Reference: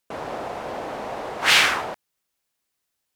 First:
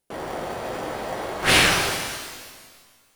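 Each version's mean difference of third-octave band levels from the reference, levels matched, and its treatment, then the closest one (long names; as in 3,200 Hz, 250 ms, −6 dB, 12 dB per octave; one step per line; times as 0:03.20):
5.0 dB: parametric band 10,000 Hz +10 dB 0.29 octaves
in parallel at −6 dB: sample-rate reduction 1,300 Hz, jitter 0%
on the sum: reverb with rising layers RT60 1.6 s, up +12 semitones, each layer −8 dB, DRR 1.5 dB
level −3 dB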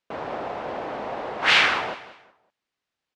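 3.5 dB: low-pass filter 3,800 Hz 12 dB per octave
low-shelf EQ 73 Hz −6.5 dB
repeating echo 186 ms, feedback 30%, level −15.5 dB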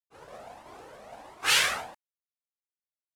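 7.0 dB: downward expander −24 dBFS
parametric band 10,000 Hz +8.5 dB 1.4 octaves
flanger whose copies keep moving one way rising 1.5 Hz
level −4 dB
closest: second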